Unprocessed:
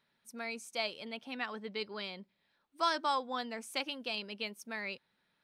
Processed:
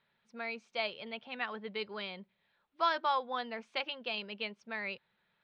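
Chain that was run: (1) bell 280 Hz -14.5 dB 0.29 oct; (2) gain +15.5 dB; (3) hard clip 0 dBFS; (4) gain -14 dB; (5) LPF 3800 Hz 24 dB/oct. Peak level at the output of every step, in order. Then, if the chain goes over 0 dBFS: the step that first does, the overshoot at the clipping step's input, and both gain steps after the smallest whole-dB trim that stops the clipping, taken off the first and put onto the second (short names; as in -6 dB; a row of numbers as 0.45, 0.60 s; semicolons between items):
-17.5, -2.0, -2.0, -16.0, -17.5 dBFS; no overload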